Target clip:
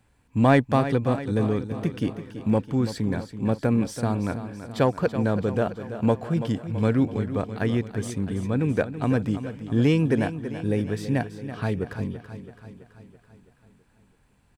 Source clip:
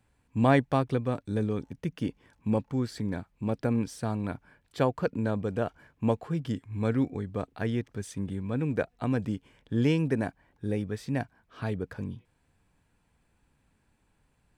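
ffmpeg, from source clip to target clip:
ffmpeg -i in.wav -filter_complex "[0:a]asplit=2[link_01][link_02];[link_02]asoftclip=type=hard:threshold=-22.5dB,volume=-8dB[link_03];[link_01][link_03]amix=inputs=2:normalize=0,aecho=1:1:331|662|993|1324|1655|1986|2317:0.266|0.154|0.0895|0.0519|0.0301|0.0175|0.0101,volume=2.5dB" out.wav

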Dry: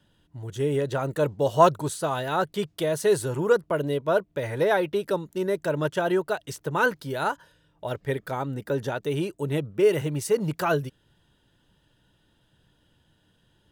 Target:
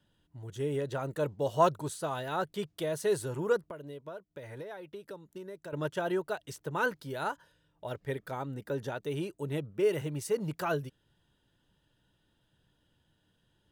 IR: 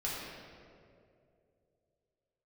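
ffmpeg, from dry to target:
-filter_complex "[0:a]asettb=1/sr,asplit=3[link_01][link_02][link_03];[link_01]atrim=end=3.584[link_04];[link_02]atrim=start=3.58:end=5.73,asetpts=PTS-STARTPTS,afade=type=in:duration=0.004:curve=qsin,afade=type=out:start_time=2.146:duration=0.004:curve=qsin,acompressor=threshold=-34dB:ratio=6[link_05];[link_03]atrim=start=5.726[link_06];[link_04][link_05]acrossfade=duration=0.004:curve1=hsin:curve2=qsin[link_07];[link_07][link_06]acrossfade=duration=0.004:curve1=qsin:curve2=hsin,volume=-7.5dB"

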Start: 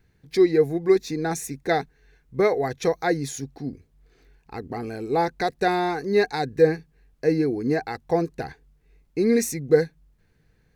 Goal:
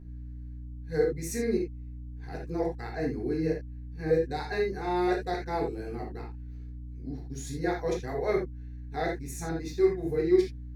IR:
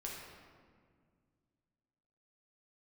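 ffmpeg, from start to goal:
-filter_complex "[0:a]areverse,aeval=exprs='val(0)+0.0178*(sin(2*PI*60*n/s)+sin(2*PI*2*60*n/s)/2+sin(2*PI*3*60*n/s)/3+sin(2*PI*4*60*n/s)/4+sin(2*PI*5*60*n/s)/5)':channel_layout=same[link_01];[1:a]atrim=start_sample=2205,atrim=end_sample=3528,asetrate=38367,aresample=44100[link_02];[link_01][link_02]afir=irnorm=-1:irlink=0,volume=-6dB"

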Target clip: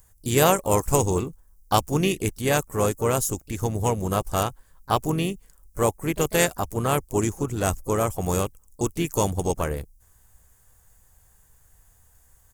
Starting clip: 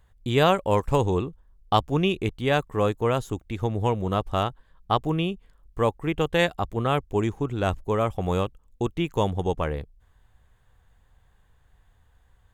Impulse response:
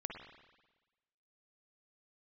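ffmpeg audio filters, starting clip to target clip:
-filter_complex "[0:a]asplit=4[link_01][link_02][link_03][link_04];[link_02]asetrate=33038,aresample=44100,atempo=1.33484,volume=-15dB[link_05];[link_03]asetrate=37084,aresample=44100,atempo=1.18921,volume=-13dB[link_06];[link_04]asetrate=55563,aresample=44100,atempo=0.793701,volume=-16dB[link_07];[link_01][link_05][link_06][link_07]amix=inputs=4:normalize=0,aexciter=amount=9.5:drive=4.7:freq=5300"

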